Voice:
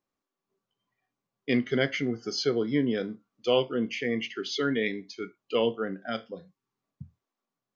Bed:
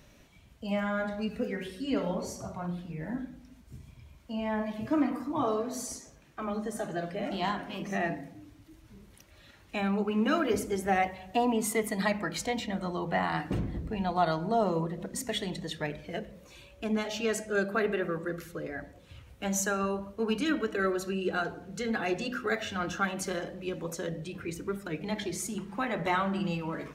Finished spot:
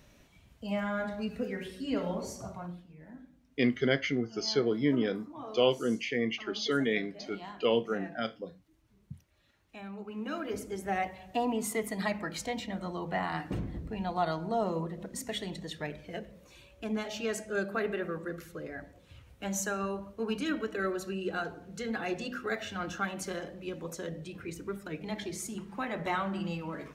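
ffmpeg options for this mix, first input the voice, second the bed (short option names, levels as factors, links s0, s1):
-filter_complex "[0:a]adelay=2100,volume=0.841[s0];[1:a]volume=2.66,afade=t=out:st=2.49:d=0.37:silence=0.251189,afade=t=in:st=9.95:d=1.31:silence=0.298538[s1];[s0][s1]amix=inputs=2:normalize=0"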